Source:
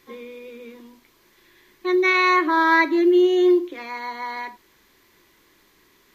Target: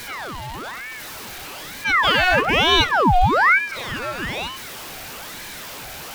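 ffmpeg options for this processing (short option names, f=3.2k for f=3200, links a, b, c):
-af "aeval=exprs='val(0)+0.5*0.0335*sgn(val(0))':c=same,aeval=exprs='val(0)*sin(2*PI*1200*n/s+1200*0.7/1.1*sin(2*PI*1.1*n/s))':c=same,volume=3dB"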